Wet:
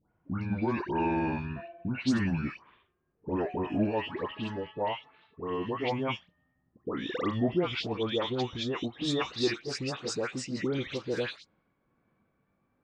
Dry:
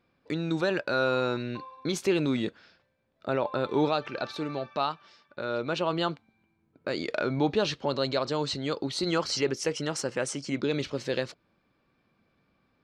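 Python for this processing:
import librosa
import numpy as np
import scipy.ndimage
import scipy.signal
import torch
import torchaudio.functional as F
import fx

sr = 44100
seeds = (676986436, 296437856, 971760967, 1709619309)

y = fx.pitch_glide(x, sr, semitones=-8.5, runs='ending unshifted')
y = fx.dispersion(y, sr, late='highs', ms=130.0, hz=1600.0)
y = fx.env_lowpass(y, sr, base_hz=1800.0, full_db=-26.5)
y = y * librosa.db_to_amplitude(-1.0)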